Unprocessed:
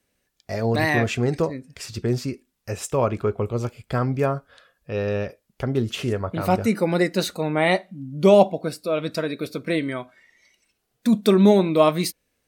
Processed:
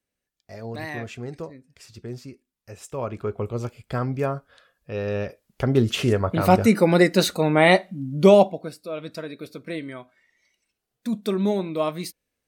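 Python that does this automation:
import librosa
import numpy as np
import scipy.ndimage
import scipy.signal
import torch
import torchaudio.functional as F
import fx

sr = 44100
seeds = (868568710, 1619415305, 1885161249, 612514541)

y = fx.gain(x, sr, db=fx.line((2.72, -12.0), (3.43, -3.0), (5.01, -3.0), (5.76, 4.0), (8.16, 4.0), (8.74, -8.0)))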